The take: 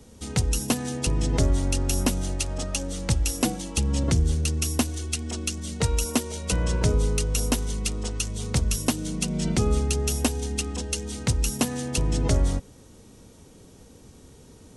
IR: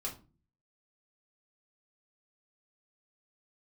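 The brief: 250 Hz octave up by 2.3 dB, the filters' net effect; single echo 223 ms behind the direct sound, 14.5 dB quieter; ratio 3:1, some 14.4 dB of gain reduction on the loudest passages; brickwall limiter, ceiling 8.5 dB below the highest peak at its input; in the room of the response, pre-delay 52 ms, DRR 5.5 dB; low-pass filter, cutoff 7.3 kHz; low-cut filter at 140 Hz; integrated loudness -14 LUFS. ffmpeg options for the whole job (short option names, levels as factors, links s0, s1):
-filter_complex "[0:a]highpass=140,lowpass=7300,equalizer=f=250:t=o:g=3.5,acompressor=threshold=0.0141:ratio=3,alimiter=level_in=1.68:limit=0.0631:level=0:latency=1,volume=0.596,aecho=1:1:223:0.188,asplit=2[s0][s1];[1:a]atrim=start_sample=2205,adelay=52[s2];[s1][s2]afir=irnorm=-1:irlink=0,volume=0.501[s3];[s0][s3]amix=inputs=2:normalize=0,volume=16.8"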